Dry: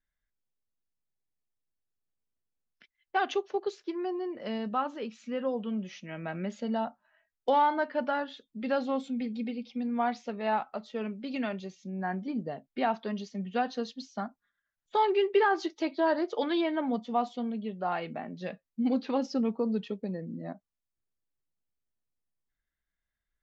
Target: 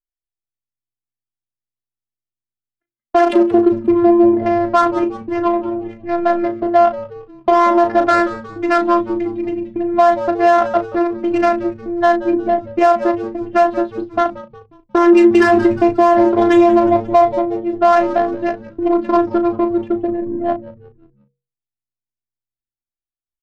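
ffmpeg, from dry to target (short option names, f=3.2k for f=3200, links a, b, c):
-filter_complex "[0:a]agate=range=-34dB:threshold=-43dB:ratio=16:detection=peak,lowpass=2.3k,bandreject=f=50:t=h:w=6,bandreject=f=100:t=h:w=6,bandreject=f=150:t=h:w=6,bandreject=f=200:t=h:w=6,bandreject=f=250:t=h:w=6,bandreject=f=300:t=h:w=6,bandreject=f=350:t=h:w=6,bandreject=f=400:t=h:w=6,acrossover=split=410[a][b];[a]acompressor=threshold=-40dB:ratio=6[c];[c][b]amix=inputs=2:normalize=0,afftfilt=real='hypot(re,im)*cos(PI*b)':imag='0':win_size=512:overlap=0.75,adynamicsmooth=sensitivity=6.5:basefreq=950,asplit=2[d][e];[e]adelay=35,volume=-10.5dB[f];[d][f]amix=inputs=2:normalize=0,asplit=2[g][h];[h]asplit=4[i][j][k][l];[i]adelay=179,afreqshift=-120,volume=-18dB[m];[j]adelay=358,afreqshift=-240,volume=-24.6dB[n];[k]adelay=537,afreqshift=-360,volume=-31.1dB[o];[l]adelay=716,afreqshift=-480,volume=-37.7dB[p];[m][n][o][p]amix=inputs=4:normalize=0[q];[g][q]amix=inputs=2:normalize=0,alimiter=level_in=26.5dB:limit=-1dB:release=50:level=0:latency=1,volume=-1dB"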